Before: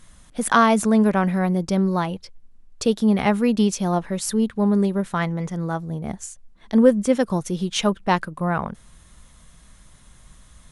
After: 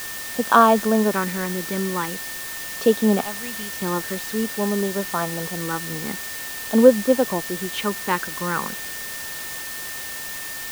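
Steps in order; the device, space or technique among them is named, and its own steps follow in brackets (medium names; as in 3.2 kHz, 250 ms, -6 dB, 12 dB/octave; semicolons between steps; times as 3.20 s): 3.21–3.82 s: amplifier tone stack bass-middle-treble 5-5-5; shortwave radio (band-pass 290–2800 Hz; tremolo 0.32 Hz, depth 42%; LFO notch square 0.45 Hz 680–2000 Hz; whistle 1.8 kHz -41 dBFS; white noise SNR 10 dB); trim +5.5 dB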